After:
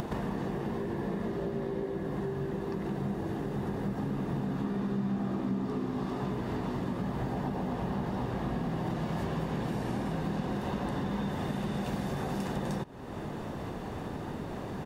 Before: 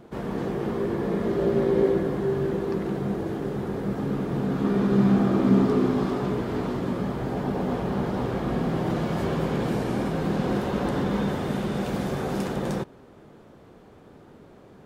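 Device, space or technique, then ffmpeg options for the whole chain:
upward and downward compression: -filter_complex "[0:a]asettb=1/sr,asplit=3[a][b][c];[a]atrim=end=0.664[d];[b]atrim=start=0.66:end=1.09,asetpts=PTS-STARTPTS,afade=t=in:d=0.004:c=qsin,afade=t=out:st=0.426:d=0.004:c=qsin,bandreject=f=1.2k:w=9.8[e];[c]atrim=start=1.086[f];[d][e]acrossfade=d=0.004:c1=hsin:c2=qsin[g];[g][f]acrossfade=d=0.004:c1=qsin:c2=hsin,acompressor=mode=upward:threshold=-25dB:ratio=2.5,acompressor=threshold=-30dB:ratio=6,aecho=1:1:1.1:0.31"

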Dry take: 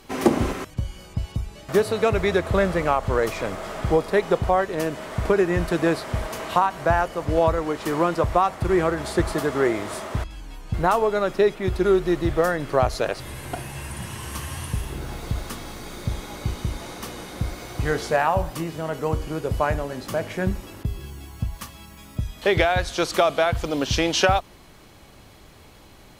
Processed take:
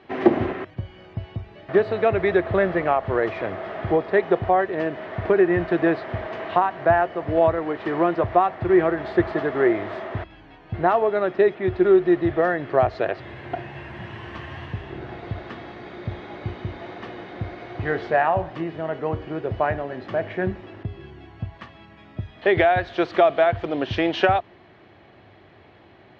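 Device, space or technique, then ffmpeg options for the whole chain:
guitar cabinet: -filter_complex "[0:a]highpass=100,equalizer=f=100:t=q:w=4:g=7,equalizer=f=360:t=q:w=4:g=8,equalizer=f=690:t=q:w=4:g=8,equalizer=f=1.8k:t=q:w=4:g=7,lowpass=f=3.4k:w=0.5412,lowpass=f=3.4k:w=1.3066,asettb=1/sr,asplit=3[a][b][c];[a]atrim=end=0.464[d];[b]atrim=start=0.46:end=1.77,asetpts=PTS-STARTPTS,afade=t=in:d=0.004:c=qsin,afade=t=out:st=1.306:d=0.004:c=qsin,acrossover=split=4000[e][f];[f]acompressor=threshold=-59dB:ratio=4:attack=1:release=60[g];[e][g]amix=inputs=2:normalize=0[h];[c]atrim=start=1.766[i];[d][h]acrossfade=d=0.004:c1=hsin:c2=qsin[j];[j][i]acrossfade=d=0.004:c1=qsin:c2=hsin,volume=-3.5dB"

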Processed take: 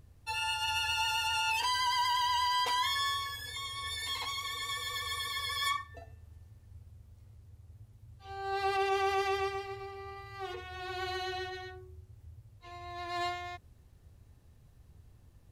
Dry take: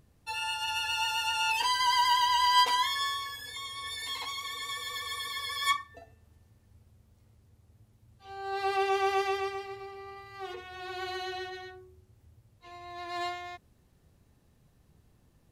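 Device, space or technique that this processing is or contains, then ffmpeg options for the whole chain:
car stereo with a boomy subwoofer: -af "lowshelf=f=130:t=q:w=1.5:g=6.5,alimiter=limit=-22.5dB:level=0:latency=1:release=42"

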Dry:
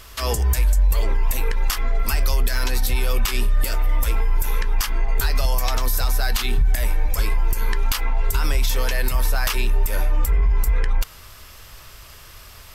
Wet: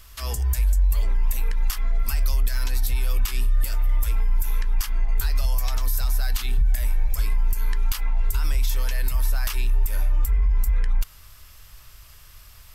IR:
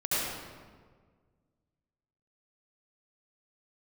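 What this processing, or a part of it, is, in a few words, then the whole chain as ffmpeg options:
smiley-face EQ: -af "lowshelf=f=85:g=8,equalizer=f=420:t=o:w=1.6:g=-5.5,highshelf=f=8k:g=6,volume=-8.5dB"

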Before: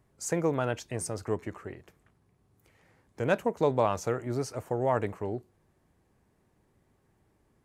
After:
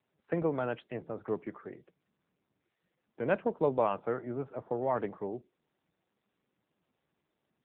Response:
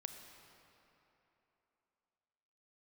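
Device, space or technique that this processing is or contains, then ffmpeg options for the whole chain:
mobile call with aggressive noise cancelling: -filter_complex "[0:a]asettb=1/sr,asplit=3[a][b][c];[a]atrim=end=3.314[d];[b]atrim=start=3.31:end=4.04,asetpts=PTS-STARTPTS,afade=t=in:d=0.004:c=qsin,afade=t=out:st=0.726:d=0.004:c=qsin,equalizer=f=69:t=o:w=0.21:g=-2.5[e];[c]atrim=start=4.036[f];[d][e]acrossfade=d=0.004:c1=hsin:c2=qsin[g];[g][f]acrossfade=d=0.004:c1=qsin:c2=hsin,highpass=f=140:w=0.5412,highpass=f=140:w=1.3066,afftdn=nr=19:nf=-52,volume=-2dB" -ar 8000 -c:a libopencore_amrnb -b:a 7950

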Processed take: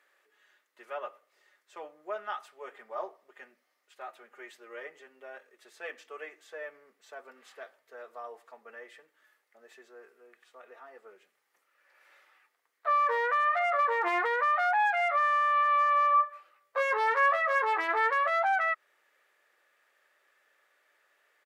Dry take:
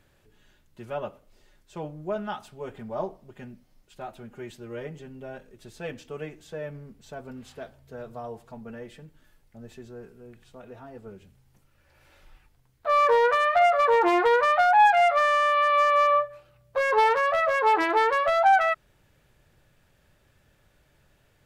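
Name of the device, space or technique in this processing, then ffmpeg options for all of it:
laptop speaker: -filter_complex "[0:a]highpass=f=420:w=0.5412,highpass=f=420:w=1.3066,equalizer=f=1.2k:t=o:w=0.21:g=10,equalizer=f=1.9k:t=o:w=0.58:g=10.5,alimiter=limit=-13.5dB:level=0:latency=1:release=103,asplit=3[a][b][c];[a]afade=t=out:st=16.13:d=0.02[d];[b]asplit=2[e][f];[f]adelay=18,volume=-5dB[g];[e][g]amix=inputs=2:normalize=0,afade=t=in:st=16.13:d=0.02,afade=t=out:st=18.08:d=0.02[h];[c]afade=t=in:st=18.08:d=0.02[i];[d][h][i]amix=inputs=3:normalize=0,volume=-6.5dB"

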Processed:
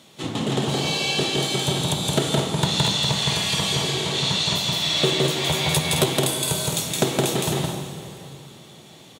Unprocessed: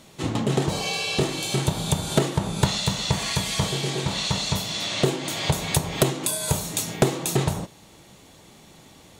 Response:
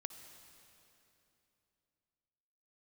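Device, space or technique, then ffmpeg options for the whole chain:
stadium PA: -filter_complex "[0:a]highpass=120,equalizer=f=3.4k:t=o:w=0.51:g=6.5,aecho=1:1:166.2|215.7:0.794|0.447[a];[1:a]atrim=start_sample=2205[b];[a][b]afir=irnorm=-1:irlink=0,asettb=1/sr,asplit=3[c][d][e];[c]atrim=end=4.834[f];[d]atrim=start=4.83:end=6.06,asetpts=PTS-STARTPTS,afade=t=in:d=0.004:c=qsin,afade=t=out:st=1.226:d=0.004:c=qsin,asplit=2[g][h];[h]adelay=13,volume=-5dB[i];[g][i]amix=inputs=2:normalize=0,atrim=end_sample=54243[j];[e]atrim=start=6.056[k];[f][j]acrossfade=d=0.004:c1=hsin:c2=qsin[l];[l][k]acrossfade=d=0.004:c1=qsin:c2=hsin,volume=2dB"

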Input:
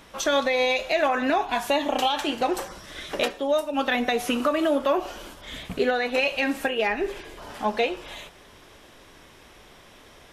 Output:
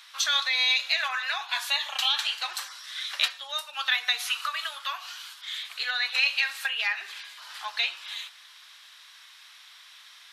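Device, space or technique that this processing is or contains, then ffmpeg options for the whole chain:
headphones lying on a table: -filter_complex "[0:a]asettb=1/sr,asplit=3[a][b][c];[a]atrim=end=4.274[d];[b]atrim=start=4.27:end=5.63,asetpts=PTS-STARTPTS,afade=t=in:d=0.004:c=qsin,afade=t=out:st=1.356:d=0.004:c=qsin,highpass=790[e];[c]atrim=start=5.626[f];[d][e]acrossfade=d=0.004:c1=hsin:c2=qsin[g];[g][f]acrossfade=d=0.004:c1=qsin:c2=hsin,highpass=f=1.2k:w=0.5412,highpass=f=1.2k:w=1.3066,equalizer=f=4.1k:t=o:w=0.59:g=9.5"

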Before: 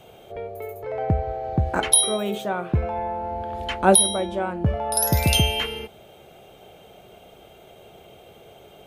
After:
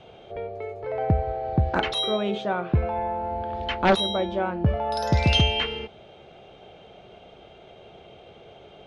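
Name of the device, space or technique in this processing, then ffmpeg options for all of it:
synthesiser wavefolder: -af "aeval=exprs='0.282*(abs(mod(val(0)/0.282+3,4)-2)-1)':c=same,lowpass=f=5k:w=0.5412,lowpass=f=5k:w=1.3066"

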